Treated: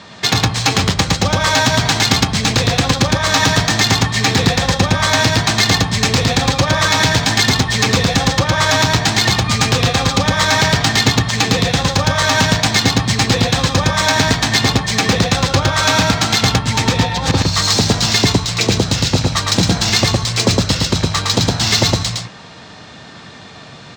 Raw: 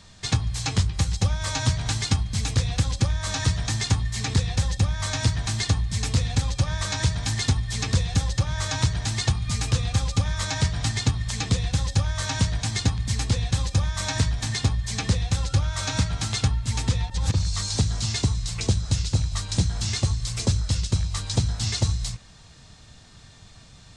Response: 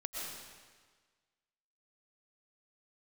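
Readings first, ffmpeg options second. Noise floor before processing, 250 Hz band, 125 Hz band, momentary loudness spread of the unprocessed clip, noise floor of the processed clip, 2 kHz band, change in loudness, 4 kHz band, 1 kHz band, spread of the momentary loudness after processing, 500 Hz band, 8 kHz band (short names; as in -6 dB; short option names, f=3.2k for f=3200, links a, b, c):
-49 dBFS, +14.0 dB, +6.0 dB, 2 LU, -37 dBFS, +17.5 dB, +11.5 dB, +15.5 dB, +18.5 dB, 3 LU, +18.0 dB, +11.0 dB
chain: -af "highpass=220,adynamicsmooth=sensitivity=2.5:basefreq=3.6k,aecho=1:1:111:0.708,alimiter=level_in=19dB:limit=-1dB:release=50:level=0:latency=1,volume=-1dB"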